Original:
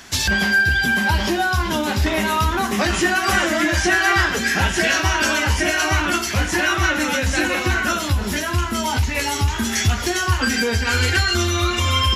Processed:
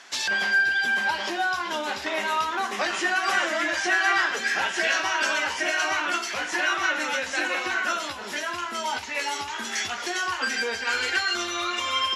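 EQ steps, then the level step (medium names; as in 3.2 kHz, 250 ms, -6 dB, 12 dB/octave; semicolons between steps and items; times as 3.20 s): high-pass 520 Hz 12 dB/octave; low-pass 9.9 kHz 12 dB/octave; treble shelf 7.3 kHz -9 dB; -4.0 dB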